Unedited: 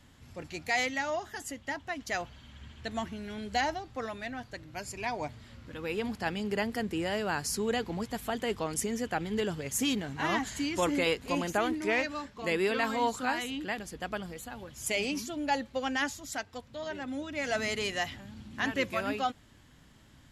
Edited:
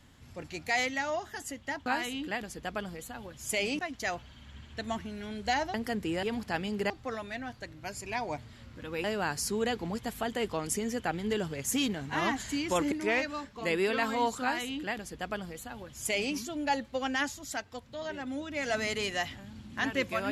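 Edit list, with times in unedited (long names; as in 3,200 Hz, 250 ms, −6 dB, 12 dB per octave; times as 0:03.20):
0:03.81–0:05.95: swap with 0:06.62–0:07.11
0:10.99–0:11.73: remove
0:13.23–0:15.16: duplicate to 0:01.86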